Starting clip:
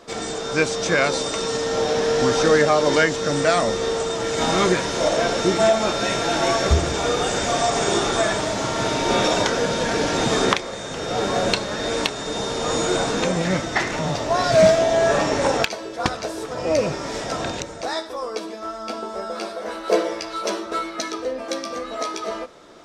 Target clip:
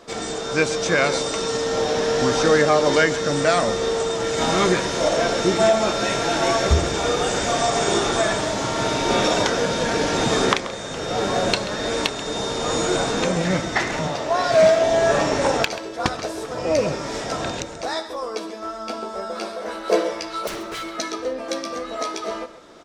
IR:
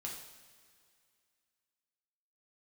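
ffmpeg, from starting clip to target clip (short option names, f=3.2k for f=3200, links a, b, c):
-filter_complex "[0:a]asettb=1/sr,asplit=3[a][b][c];[a]atrim=end=14.074[d];[b]atrim=start=14.07:end=14.84,asetpts=PTS-STARTPTS,afade=t=in:d=0.004:c=qsin,afade=t=out:st=0.766:d=0.004:c=qsin,bass=f=250:g=-9,treble=f=4k:g=-4[e];[c]atrim=start=14.836[f];[d][e]acrossfade=d=0.004:c1=hsin:c2=qsin[g];[g][f]acrossfade=d=0.004:c1=qsin:c2=hsin,asettb=1/sr,asplit=3[h][i][j];[h]atrim=end=20.474[k];[i]atrim=start=20.47:end=20.98,asetpts=PTS-STARTPTS,afade=t=in:d=0.004:c=qsin,afade=t=out:st=0.506:d=0.004:c=qsin,aeval=exprs='0.0531*(abs(mod(val(0)/0.0531+3,4)-2)-1)':c=same[l];[j]atrim=start=20.976[m];[k][l]acrossfade=d=0.004:c1=hsin:c2=qsin[n];[n][m]acrossfade=d=0.004:c1=qsin:c2=hsin,asplit=2[o][p];[p]adelay=134.1,volume=-14dB,highshelf=f=4k:g=-3.02[q];[o][q]amix=inputs=2:normalize=0"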